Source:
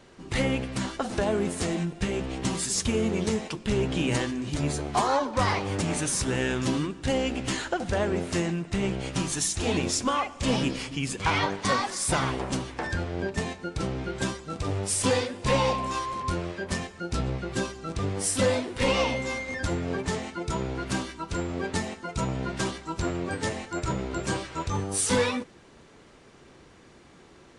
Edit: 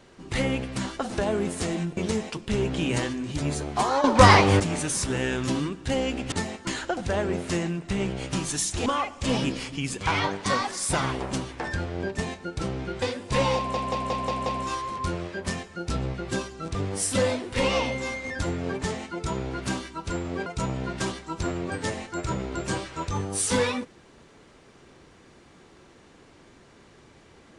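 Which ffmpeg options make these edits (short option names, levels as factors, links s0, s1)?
-filter_complex "[0:a]asplit=14[s0][s1][s2][s3][s4][s5][s6][s7][s8][s9][s10][s11][s12][s13];[s0]atrim=end=1.972[s14];[s1]atrim=start=3.148:end=5.222[s15];[s2]atrim=start=5.218:end=5.782,asetpts=PTS-STARTPTS,volume=3.55[s16];[s3]atrim=start=5.778:end=7.502[s17];[s4]atrim=start=21.698:end=22.052[s18];[s5]atrim=start=7.498:end=9.692[s19];[s6]atrim=start=10.048:end=14.212[s20];[s7]atrim=start=15.158:end=15.882[s21];[s8]atrim=start=15.698:end=15.882[s22];[s9]atrim=start=15.698:end=15.882[s23];[s10]atrim=start=15.698:end=15.882[s24];[s11]atrim=start=15.698:end=15.882[s25];[s12]atrim=start=15.698:end=21.702[s26];[s13]atrim=start=22.048[s27];[s14][s15]acrossfade=d=0.004:c1=hsin:c2=hsin[s28];[s28][s16]acrossfade=d=0.004:c1=hsin:c2=hsin[s29];[s29][s17]acrossfade=d=0.004:c1=hsin:c2=hsin[s30];[s30][s18]acrossfade=d=0.004:c1=hsin:c2=hsin[s31];[s31][s19]acrossfade=d=0.004:c1=hsin:c2=hsin[s32];[s32][s20]acrossfade=d=0.004:c1=hsin:c2=hsin[s33];[s33][s21]acrossfade=d=0.004:c1=hsin:c2=hsin[s34];[s34][s22]acrossfade=d=0.004:c1=hsin:c2=hsin[s35];[s35][s23]acrossfade=d=0.004:c1=hsin:c2=hsin[s36];[s36][s24]acrossfade=d=0.004:c1=hsin:c2=hsin[s37];[s37][s25]acrossfade=d=0.004:c1=hsin:c2=hsin[s38];[s38][s26]acrossfade=d=0.004:c1=hsin:c2=hsin[s39];[s39][s27]acrossfade=d=0.004:c1=hsin:c2=hsin"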